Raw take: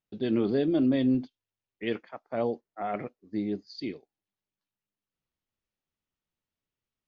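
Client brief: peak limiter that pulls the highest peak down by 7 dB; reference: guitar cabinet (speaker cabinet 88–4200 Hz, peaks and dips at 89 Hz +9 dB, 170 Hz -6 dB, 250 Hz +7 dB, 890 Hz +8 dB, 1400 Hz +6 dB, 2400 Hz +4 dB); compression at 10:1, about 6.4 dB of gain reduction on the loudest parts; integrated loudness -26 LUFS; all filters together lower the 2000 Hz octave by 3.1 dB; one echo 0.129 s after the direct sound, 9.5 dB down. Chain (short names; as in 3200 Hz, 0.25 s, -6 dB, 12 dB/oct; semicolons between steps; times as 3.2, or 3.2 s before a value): bell 2000 Hz -8 dB; compressor 10:1, threshold -27 dBFS; limiter -27 dBFS; speaker cabinet 88–4200 Hz, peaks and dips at 89 Hz +9 dB, 170 Hz -6 dB, 250 Hz +7 dB, 890 Hz +8 dB, 1400 Hz +6 dB, 2400 Hz +4 dB; echo 0.129 s -9.5 dB; gain +8 dB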